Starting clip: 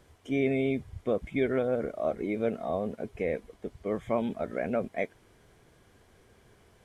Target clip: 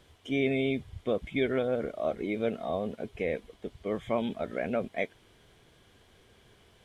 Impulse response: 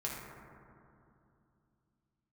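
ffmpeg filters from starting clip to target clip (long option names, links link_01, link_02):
-af "equalizer=frequency=3300:width=1.7:gain=9,volume=-1dB"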